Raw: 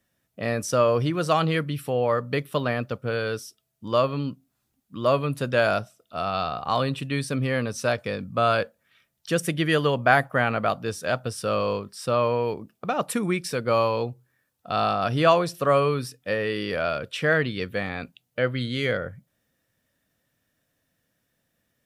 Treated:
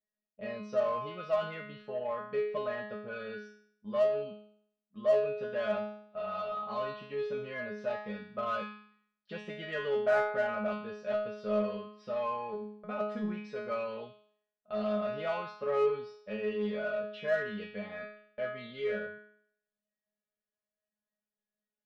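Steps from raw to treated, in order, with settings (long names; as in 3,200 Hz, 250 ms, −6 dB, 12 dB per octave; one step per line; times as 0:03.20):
noise gate −40 dBFS, range −12 dB
Bessel low-pass filter 2,700 Hz, order 6
parametric band 570 Hz +11.5 dB 0.36 octaves
tuned comb filter 210 Hz, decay 0.62 s, harmonics all, mix 100%
in parallel at −3.5 dB: soft clipping −38 dBFS, distortion −6 dB
on the sum: level +2 dB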